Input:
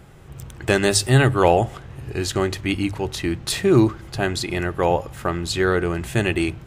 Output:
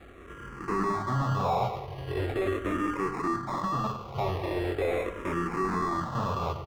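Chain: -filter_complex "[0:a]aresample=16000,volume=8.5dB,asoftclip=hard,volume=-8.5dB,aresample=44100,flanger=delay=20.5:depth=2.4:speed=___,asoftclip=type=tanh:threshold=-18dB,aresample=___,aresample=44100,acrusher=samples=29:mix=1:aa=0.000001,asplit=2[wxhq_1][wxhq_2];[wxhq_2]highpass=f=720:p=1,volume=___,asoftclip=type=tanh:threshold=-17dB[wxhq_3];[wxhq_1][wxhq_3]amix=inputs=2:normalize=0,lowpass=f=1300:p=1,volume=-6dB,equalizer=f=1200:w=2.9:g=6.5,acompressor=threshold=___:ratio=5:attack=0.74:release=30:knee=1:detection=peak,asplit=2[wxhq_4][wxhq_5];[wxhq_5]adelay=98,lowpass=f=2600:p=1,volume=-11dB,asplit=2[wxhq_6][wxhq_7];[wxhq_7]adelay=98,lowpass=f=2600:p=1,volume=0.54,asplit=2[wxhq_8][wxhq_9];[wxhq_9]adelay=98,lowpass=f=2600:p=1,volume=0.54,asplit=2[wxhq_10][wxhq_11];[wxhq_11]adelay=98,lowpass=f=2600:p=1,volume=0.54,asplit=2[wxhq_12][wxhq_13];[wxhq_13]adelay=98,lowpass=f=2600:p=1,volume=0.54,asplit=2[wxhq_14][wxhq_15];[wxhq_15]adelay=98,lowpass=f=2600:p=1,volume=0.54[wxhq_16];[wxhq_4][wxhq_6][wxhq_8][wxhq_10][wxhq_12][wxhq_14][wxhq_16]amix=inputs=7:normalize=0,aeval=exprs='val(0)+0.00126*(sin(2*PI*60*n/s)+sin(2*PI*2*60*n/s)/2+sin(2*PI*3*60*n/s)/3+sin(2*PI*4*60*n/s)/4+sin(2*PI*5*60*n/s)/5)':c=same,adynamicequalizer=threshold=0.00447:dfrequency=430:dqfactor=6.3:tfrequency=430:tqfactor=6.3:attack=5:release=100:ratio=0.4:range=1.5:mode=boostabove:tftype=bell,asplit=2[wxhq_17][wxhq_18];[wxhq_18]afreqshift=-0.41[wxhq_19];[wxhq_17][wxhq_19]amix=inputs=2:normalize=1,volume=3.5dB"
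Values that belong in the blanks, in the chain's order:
2.7, 8000, 13dB, -26dB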